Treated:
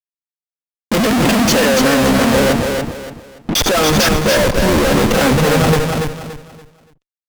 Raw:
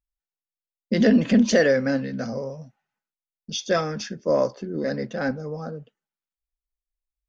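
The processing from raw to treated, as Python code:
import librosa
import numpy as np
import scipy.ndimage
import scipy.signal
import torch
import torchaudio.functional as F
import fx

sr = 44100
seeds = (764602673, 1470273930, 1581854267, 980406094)

p1 = fx.low_shelf(x, sr, hz=180.0, db=-9.5)
p2 = fx.schmitt(p1, sr, flips_db=-38.0)
p3 = p1 + (p2 * librosa.db_to_amplitude(-3.0))
p4 = fx.formant_cascade(p3, sr, vowel='u', at=(2.51, 3.55), fade=0.02)
p5 = fx.fuzz(p4, sr, gain_db=45.0, gate_db=-48.0)
y = fx.echo_feedback(p5, sr, ms=286, feedback_pct=30, wet_db=-4.5)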